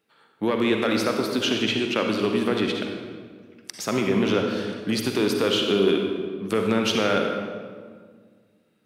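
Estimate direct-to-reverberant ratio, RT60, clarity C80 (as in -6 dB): 2.5 dB, 1.7 s, 4.5 dB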